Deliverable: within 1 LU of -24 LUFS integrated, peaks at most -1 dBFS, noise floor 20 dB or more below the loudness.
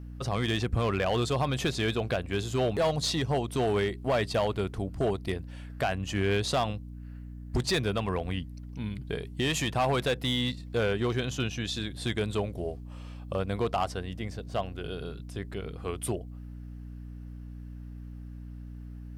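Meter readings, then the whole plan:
clipped samples 1.1%; clipping level -21.0 dBFS; hum 60 Hz; highest harmonic 300 Hz; hum level -39 dBFS; loudness -30.5 LUFS; peak level -21.0 dBFS; loudness target -24.0 LUFS
-> clip repair -21 dBFS; hum notches 60/120/180/240/300 Hz; trim +6.5 dB

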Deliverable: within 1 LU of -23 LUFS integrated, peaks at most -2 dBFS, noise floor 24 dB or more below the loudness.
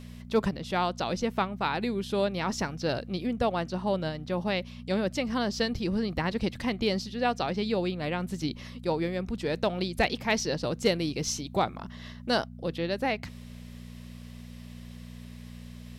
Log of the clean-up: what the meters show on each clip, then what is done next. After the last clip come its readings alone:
hum 60 Hz; highest harmonic 240 Hz; hum level -41 dBFS; loudness -30.0 LUFS; peak level -14.0 dBFS; loudness target -23.0 LUFS
-> de-hum 60 Hz, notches 4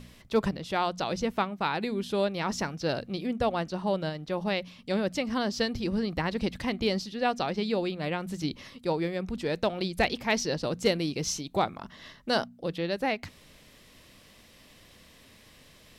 hum not found; loudness -30.0 LUFS; peak level -14.0 dBFS; loudness target -23.0 LUFS
-> trim +7 dB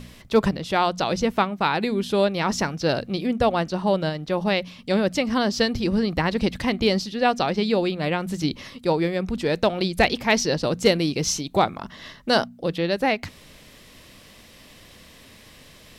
loudness -23.0 LUFS; peak level -7.0 dBFS; noise floor -49 dBFS

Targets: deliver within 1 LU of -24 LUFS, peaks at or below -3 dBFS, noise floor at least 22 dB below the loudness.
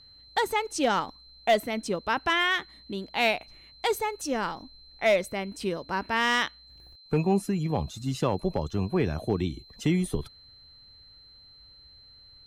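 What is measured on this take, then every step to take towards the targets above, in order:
clipped samples 0.3%; clipping level -15.5 dBFS; steady tone 4.1 kHz; tone level -51 dBFS; loudness -28.0 LUFS; peak level -15.5 dBFS; loudness target -24.0 LUFS
-> clip repair -15.5 dBFS; band-stop 4.1 kHz, Q 30; trim +4 dB

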